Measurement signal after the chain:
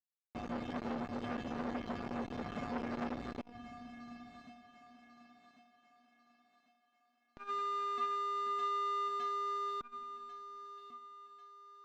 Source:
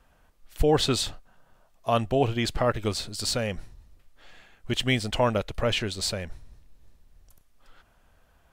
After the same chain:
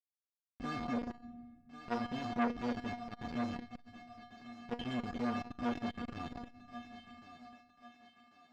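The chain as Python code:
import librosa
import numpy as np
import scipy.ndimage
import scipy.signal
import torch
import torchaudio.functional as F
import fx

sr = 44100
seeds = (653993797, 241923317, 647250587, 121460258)

p1 = fx.wiener(x, sr, points=15)
p2 = scipy.signal.sosfilt(scipy.signal.butter(2, 58.0, 'highpass', fs=sr, output='sos'), p1)
p3 = fx.riaa(p2, sr, side='playback')
p4 = fx.transient(p3, sr, attack_db=-1, sustain_db=-6)
p5 = fx.schmitt(p4, sr, flips_db=-30.0)
p6 = fx.air_absorb(p5, sr, metres=180.0)
p7 = fx.comb_fb(p6, sr, f0_hz=240.0, decay_s=0.32, harmonics='odd', damping=0.0, mix_pct=100)
p8 = p7 + fx.echo_thinned(p7, sr, ms=1094, feedback_pct=45, hz=340.0, wet_db=-12.5, dry=0)
p9 = fx.room_shoebox(p8, sr, seeds[0], volume_m3=1800.0, walls='mixed', distance_m=0.39)
p10 = fx.transformer_sat(p9, sr, knee_hz=990.0)
y = p10 * librosa.db_to_amplitude(9.0)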